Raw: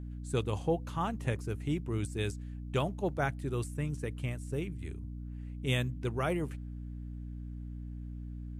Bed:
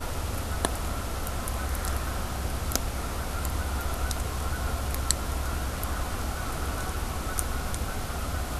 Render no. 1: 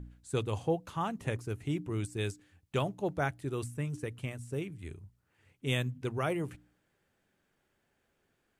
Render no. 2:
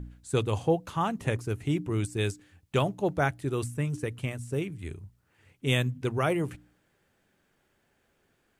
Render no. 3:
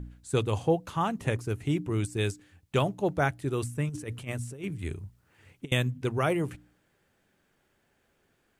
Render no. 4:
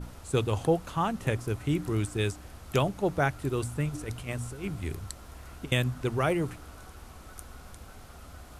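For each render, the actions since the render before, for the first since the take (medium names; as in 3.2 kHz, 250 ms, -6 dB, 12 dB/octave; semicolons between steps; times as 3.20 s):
de-hum 60 Hz, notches 5
trim +5.5 dB
3.89–5.72 s: compressor with a negative ratio -34 dBFS, ratio -0.5
add bed -16 dB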